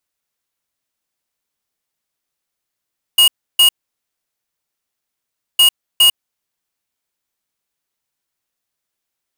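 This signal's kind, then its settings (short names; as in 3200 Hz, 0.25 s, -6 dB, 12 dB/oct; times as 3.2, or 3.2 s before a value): beep pattern square 2870 Hz, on 0.10 s, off 0.31 s, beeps 2, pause 1.90 s, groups 2, -9 dBFS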